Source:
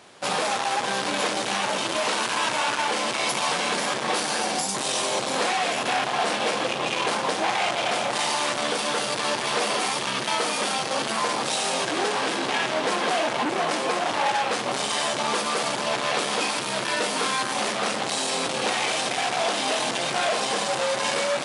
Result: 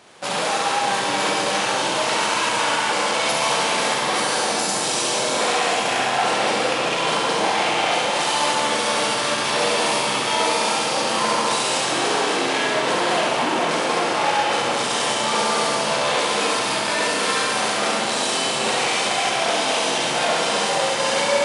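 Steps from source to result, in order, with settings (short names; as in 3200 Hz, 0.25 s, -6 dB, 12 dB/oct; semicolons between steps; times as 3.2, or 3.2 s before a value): flutter echo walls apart 11.7 m, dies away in 0.7 s; Schroeder reverb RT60 2.7 s, combs from 33 ms, DRR -0.5 dB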